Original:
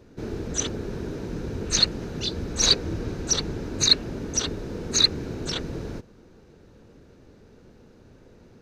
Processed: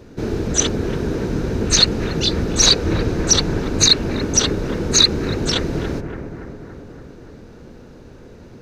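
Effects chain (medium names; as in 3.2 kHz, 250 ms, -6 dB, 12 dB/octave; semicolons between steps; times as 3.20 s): on a send: bucket-brigade echo 284 ms, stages 4096, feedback 64%, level -8 dB; on the sum: loudness maximiser +10.5 dB; trim -1 dB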